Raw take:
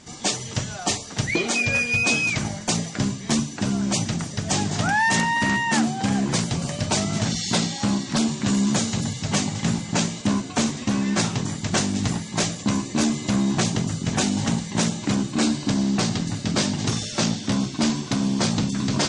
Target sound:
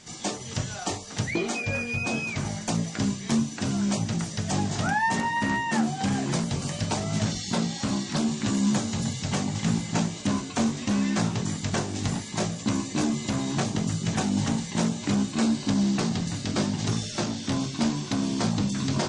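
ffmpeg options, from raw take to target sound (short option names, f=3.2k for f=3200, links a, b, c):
-filter_complex "[0:a]acrossover=split=1500[a][b];[a]flanger=delay=18:depth=4.5:speed=0.71[c];[b]acompressor=threshold=-33dB:ratio=6[d];[c][d]amix=inputs=2:normalize=0"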